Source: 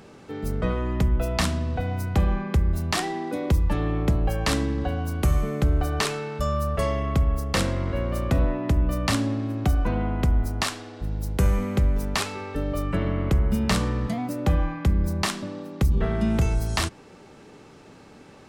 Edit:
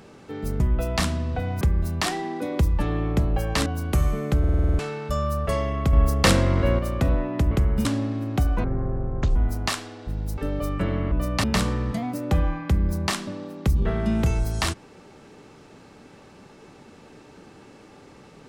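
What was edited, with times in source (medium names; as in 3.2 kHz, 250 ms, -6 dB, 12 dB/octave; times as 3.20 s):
0.60–1.01 s: delete
2.02–2.52 s: delete
4.57–4.96 s: delete
5.69 s: stutter in place 0.05 s, 8 plays
7.23–8.09 s: gain +6 dB
8.81–9.13 s: swap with 13.25–13.59 s
9.92–10.30 s: speed 53%
11.32–12.51 s: delete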